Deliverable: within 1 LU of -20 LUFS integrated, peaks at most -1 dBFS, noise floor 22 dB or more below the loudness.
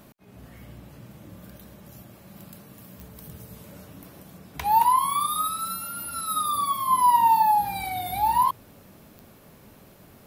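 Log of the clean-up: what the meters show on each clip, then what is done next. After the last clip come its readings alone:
clicks 4; loudness -23.0 LUFS; peak -10.0 dBFS; loudness target -20.0 LUFS
-> de-click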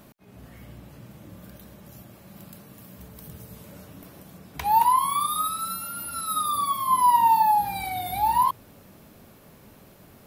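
clicks 0; loudness -23.0 LUFS; peak -10.0 dBFS; loudness target -20.0 LUFS
-> gain +3 dB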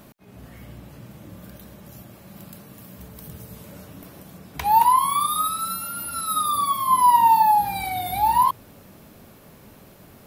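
loudness -20.0 LUFS; peak -7.0 dBFS; noise floor -49 dBFS

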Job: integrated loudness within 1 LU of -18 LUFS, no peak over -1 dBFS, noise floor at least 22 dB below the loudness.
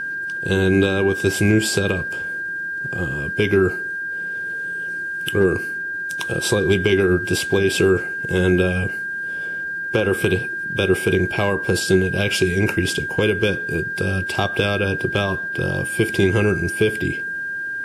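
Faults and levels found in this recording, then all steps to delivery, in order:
steady tone 1600 Hz; tone level -24 dBFS; loudness -20.5 LUFS; peak -4.0 dBFS; loudness target -18.0 LUFS
-> notch 1600 Hz, Q 30; gain +2.5 dB

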